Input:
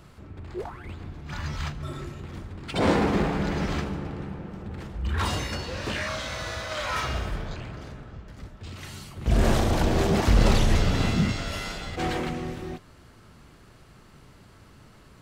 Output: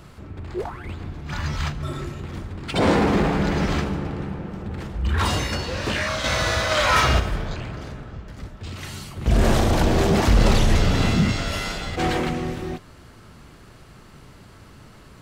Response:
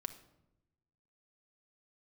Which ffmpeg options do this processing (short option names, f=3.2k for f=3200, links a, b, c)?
-filter_complex "[0:a]asplit=2[a][b];[b]alimiter=limit=-18.5dB:level=0:latency=1:release=17,volume=-1dB[c];[a][c]amix=inputs=2:normalize=0,asettb=1/sr,asplit=3[d][e][f];[d]atrim=end=6.244[g];[e]atrim=start=6.24:end=7.2,asetpts=PTS-STARTPTS,afade=t=in:d=0.004:c=qsin,afade=t=out:st=0.956:d=0.004:c=qsin,acontrast=40[h];[f]atrim=start=7.196[i];[g][h]acrossfade=d=0.004:c1=hsin:c2=qsin[j];[j][i]acrossfade=d=0.004:c1=qsin:c2=hsin"